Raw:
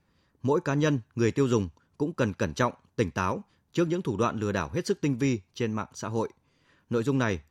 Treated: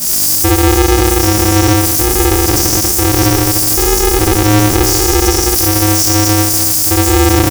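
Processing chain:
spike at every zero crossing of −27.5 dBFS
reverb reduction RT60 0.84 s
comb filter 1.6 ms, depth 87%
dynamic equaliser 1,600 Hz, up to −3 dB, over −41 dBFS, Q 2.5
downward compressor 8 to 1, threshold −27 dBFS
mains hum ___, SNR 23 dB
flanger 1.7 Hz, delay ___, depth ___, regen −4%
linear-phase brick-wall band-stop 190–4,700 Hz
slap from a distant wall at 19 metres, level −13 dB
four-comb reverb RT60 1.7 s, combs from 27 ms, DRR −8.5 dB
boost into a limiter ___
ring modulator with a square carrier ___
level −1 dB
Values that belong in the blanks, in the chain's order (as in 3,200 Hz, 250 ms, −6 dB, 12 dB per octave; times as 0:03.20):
50 Hz, 3.9 ms, 8.5 ms, +26.5 dB, 210 Hz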